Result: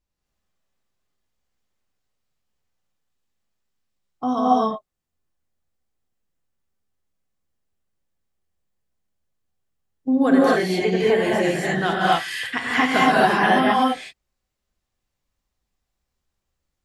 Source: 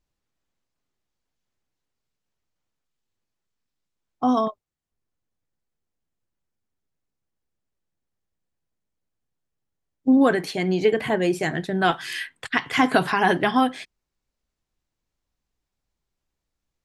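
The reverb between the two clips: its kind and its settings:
reverb whose tail is shaped and stops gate 290 ms rising, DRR −6.5 dB
level −4 dB

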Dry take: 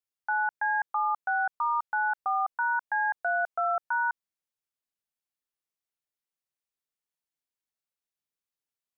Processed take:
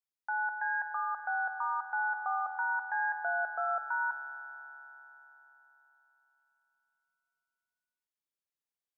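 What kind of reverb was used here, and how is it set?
spring reverb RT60 4 s, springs 48 ms, chirp 55 ms, DRR 8 dB
level −6 dB

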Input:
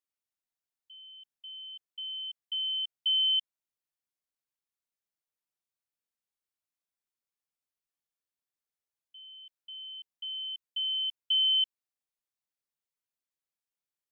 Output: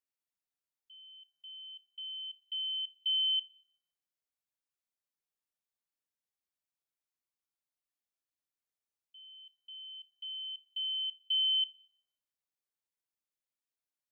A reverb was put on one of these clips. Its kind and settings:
feedback delay network reverb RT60 0.73 s, high-frequency decay 0.85×, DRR 14 dB
level −4 dB

